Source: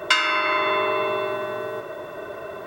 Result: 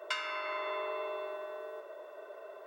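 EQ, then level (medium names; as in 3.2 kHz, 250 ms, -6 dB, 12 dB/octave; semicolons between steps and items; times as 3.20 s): ladder high-pass 420 Hz, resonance 45%; -8.5 dB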